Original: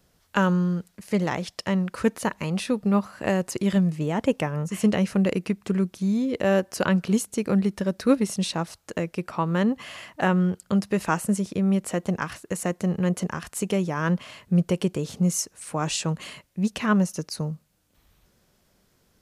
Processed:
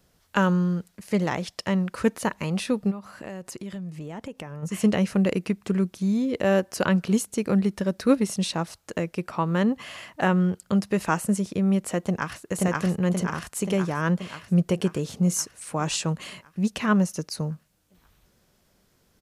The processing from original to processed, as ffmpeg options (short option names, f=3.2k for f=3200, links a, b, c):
-filter_complex "[0:a]asplit=3[a][b][c];[a]afade=t=out:st=2.9:d=0.02[d];[b]acompressor=threshold=-34dB:ratio=5:attack=3.2:release=140:knee=1:detection=peak,afade=t=in:st=2.9:d=0.02,afade=t=out:st=4.62:d=0.02[e];[c]afade=t=in:st=4.62:d=0.02[f];[d][e][f]amix=inputs=3:normalize=0,asplit=2[g][h];[h]afade=t=in:st=12:d=0.01,afade=t=out:st=12.42:d=0.01,aecho=0:1:530|1060|1590|2120|2650|3180|3710|4240|4770|5300|5830:1|0.65|0.4225|0.274625|0.178506|0.116029|0.0754189|0.0490223|0.0318645|0.0207119|0.0134627[i];[g][i]amix=inputs=2:normalize=0"